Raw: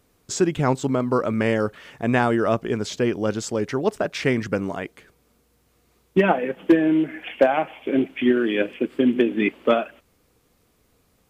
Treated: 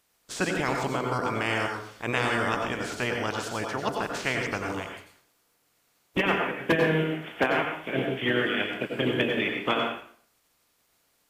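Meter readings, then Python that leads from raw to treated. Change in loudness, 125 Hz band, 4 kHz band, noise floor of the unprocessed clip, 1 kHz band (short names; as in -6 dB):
-5.5 dB, -5.0 dB, +2.5 dB, -64 dBFS, -3.0 dB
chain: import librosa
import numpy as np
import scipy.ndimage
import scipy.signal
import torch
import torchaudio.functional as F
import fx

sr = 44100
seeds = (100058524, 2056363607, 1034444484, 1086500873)

y = fx.spec_clip(x, sr, under_db=21)
y = fx.rev_plate(y, sr, seeds[0], rt60_s=0.51, hf_ratio=0.85, predelay_ms=80, drr_db=2.0)
y = y * 10.0 ** (-8.0 / 20.0)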